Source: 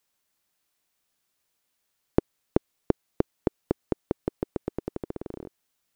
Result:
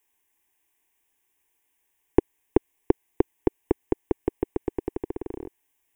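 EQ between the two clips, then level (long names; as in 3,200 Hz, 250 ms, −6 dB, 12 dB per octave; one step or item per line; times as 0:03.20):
phaser with its sweep stopped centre 890 Hz, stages 8
+5.5 dB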